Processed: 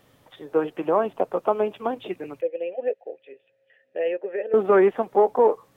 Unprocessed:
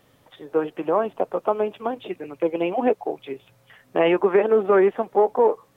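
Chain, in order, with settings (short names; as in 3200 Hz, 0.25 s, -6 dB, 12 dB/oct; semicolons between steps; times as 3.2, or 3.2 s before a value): 2.41–4.54 vowel filter e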